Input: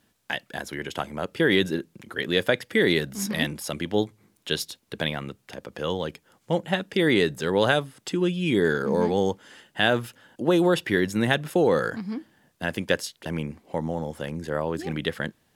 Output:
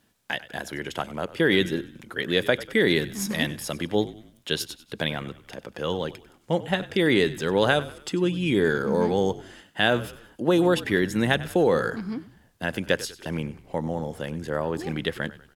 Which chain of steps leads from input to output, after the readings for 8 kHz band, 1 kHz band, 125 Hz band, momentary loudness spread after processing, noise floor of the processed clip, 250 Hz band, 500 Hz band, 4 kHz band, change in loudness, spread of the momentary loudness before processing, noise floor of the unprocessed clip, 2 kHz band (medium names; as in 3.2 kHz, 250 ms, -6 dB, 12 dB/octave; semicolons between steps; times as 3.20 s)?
0.0 dB, 0.0 dB, 0.0 dB, 12 LU, -59 dBFS, 0.0 dB, 0.0 dB, 0.0 dB, 0.0 dB, 12 LU, -68 dBFS, 0.0 dB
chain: frequency-shifting echo 96 ms, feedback 44%, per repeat -48 Hz, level -17 dB